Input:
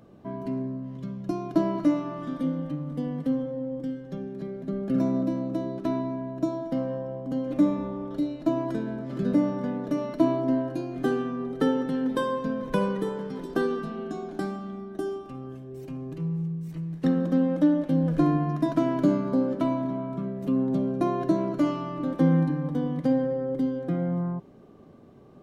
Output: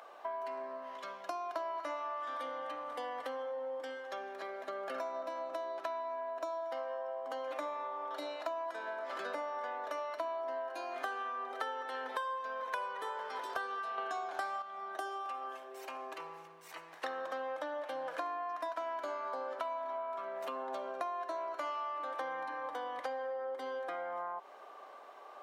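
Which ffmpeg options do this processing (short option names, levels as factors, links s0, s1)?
-filter_complex "[0:a]asplit=3[s0][s1][s2];[s0]atrim=end=13.982[s3];[s1]atrim=start=13.978:end=14.622,asetpts=PTS-STARTPTS,volume=2.66[s4];[s2]atrim=start=14.618[s5];[s3][s4]acrossfade=d=0.004:c1=hsin:c2=hsin[s6];[s6][s5]acrossfade=d=0.004:c1=hsin:c2=hsin,highpass=f=770:w=0.5412,highpass=f=770:w=1.3066,highshelf=f=2600:g=-10,acompressor=threshold=0.00282:ratio=6,volume=5.01"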